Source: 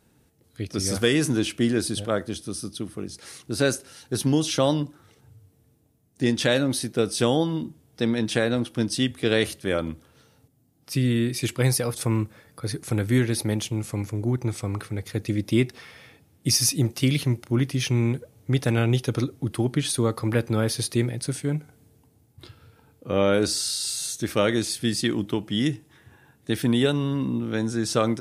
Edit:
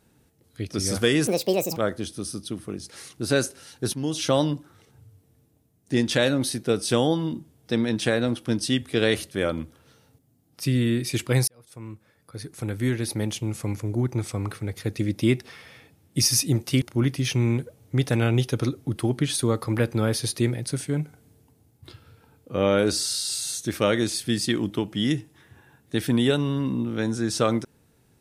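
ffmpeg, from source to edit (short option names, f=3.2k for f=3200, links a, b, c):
-filter_complex "[0:a]asplit=6[a][b][c][d][e][f];[a]atrim=end=1.274[g];[b]atrim=start=1.27:end=2.06,asetpts=PTS-STARTPTS,asetrate=70119,aresample=44100,atrim=end_sample=21911,asetpts=PTS-STARTPTS[h];[c]atrim=start=2.056:end=4.23,asetpts=PTS-STARTPTS,afade=t=out:st=2.17:d=0.004:c=hsin:silence=0.223872[i];[d]atrim=start=4.23:end=11.77,asetpts=PTS-STARTPTS,afade=t=in:d=0.35:silence=0.223872,afade=t=out:st=7.536:d=0.004:c=hsin[j];[e]atrim=start=11.77:end=17.112,asetpts=PTS-STARTPTS,afade=t=in:d=2.15[k];[f]atrim=start=17.368[l];[g][h]acrossfade=d=0.004:c1=hsin:c2=hsin[m];[i][j][k]concat=n=3:v=0:a=1[n];[m][n]acrossfade=d=0.004:c1=hsin:c2=hsin[o];[o][l]acrossfade=d=0.004:c1=hsin:c2=hsin"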